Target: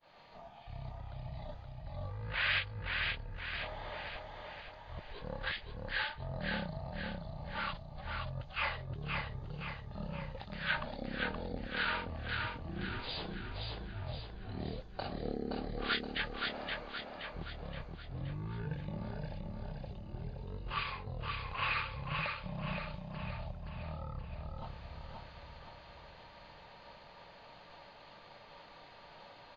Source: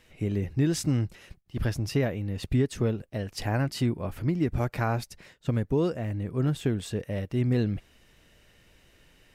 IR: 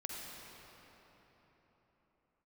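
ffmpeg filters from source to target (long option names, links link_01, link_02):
-af "agate=range=-33dB:threshold=-56dB:ratio=3:detection=peak,asetrate=13936,aresample=44100,areverse,acompressor=threshold=-38dB:ratio=6,areverse,aemphasis=mode=production:type=bsi,aecho=1:1:522|1044|1566|2088|2610|3132|3654:0.668|0.341|0.174|0.0887|0.0452|0.0231|0.0118,volume=7.5dB"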